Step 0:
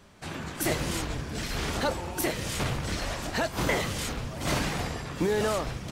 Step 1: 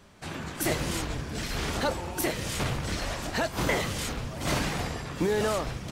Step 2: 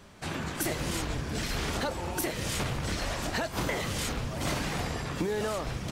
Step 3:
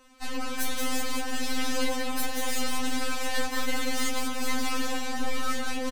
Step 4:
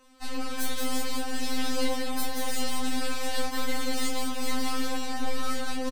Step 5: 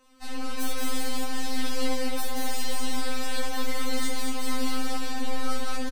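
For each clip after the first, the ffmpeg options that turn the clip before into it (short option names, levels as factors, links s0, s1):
-af anull
-af "acompressor=threshold=0.0316:ratio=6,volume=1.33"
-filter_complex "[0:a]aeval=exprs='0.141*(cos(1*acos(clip(val(0)/0.141,-1,1)))-cos(1*PI/2))+0.0316*(cos(8*acos(clip(val(0)/0.141,-1,1)))-cos(8*PI/2))':c=same,asplit=7[s0][s1][s2][s3][s4][s5][s6];[s1]adelay=184,afreqshift=32,volume=0.708[s7];[s2]adelay=368,afreqshift=64,volume=0.339[s8];[s3]adelay=552,afreqshift=96,volume=0.162[s9];[s4]adelay=736,afreqshift=128,volume=0.0785[s10];[s5]adelay=920,afreqshift=160,volume=0.0376[s11];[s6]adelay=1104,afreqshift=192,volume=0.018[s12];[s0][s7][s8][s9][s10][s11][s12]amix=inputs=7:normalize=0,afftfilt=real='re*3.46*eq(mod(b,12),0)':imag='im*3.46*eq(mod(b,12),0)':win_size=2048:overlap=0.75"
-filter_complex "[0:a]asplit=2[s0][s1];[s1]adelay=23,volume=0.596[s2];[s0][s2]amix=inputs=2:normalize=0,volume=0.75"
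-af "aecho=1:1:61.22|227.4:0.562|0.631,volume=0.75"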